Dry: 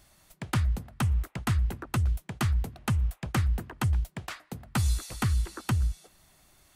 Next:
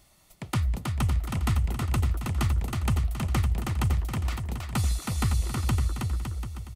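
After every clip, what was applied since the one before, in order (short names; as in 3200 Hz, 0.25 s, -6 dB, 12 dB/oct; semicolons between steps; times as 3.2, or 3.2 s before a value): notch 1600 Hz, Q 5.5; on a send: bouncing-ball echo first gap 0.32 s, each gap 0.75×, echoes 5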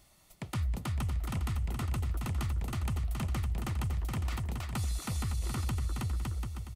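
limiter -23.5 dBFS, peak gain reduction 9.5 dB; gain -2.5 dB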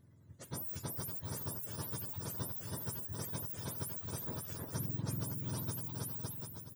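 spectrum mirrored in octaves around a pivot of 1100 Hz; AGC gain up to 4 dB; gain -7.5 dB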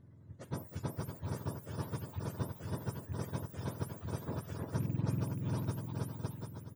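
rattling part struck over -38 dBFS, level -49 dBFS; LPF 1400 Hz 6 dB/oct; gain +5 dB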